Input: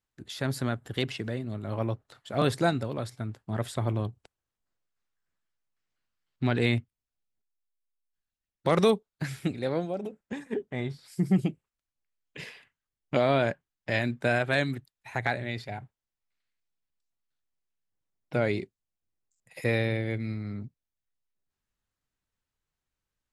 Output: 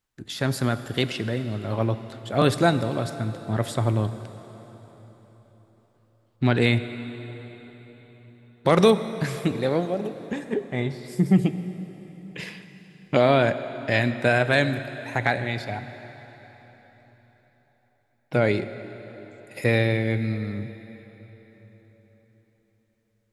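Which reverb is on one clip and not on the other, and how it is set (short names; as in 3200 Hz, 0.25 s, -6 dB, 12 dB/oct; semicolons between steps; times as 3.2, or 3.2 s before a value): plate-style reverb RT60 4.4 s, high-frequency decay 0.85×, pre-delay 0 ms, DRR 10.5 dB; gain +5.5 dB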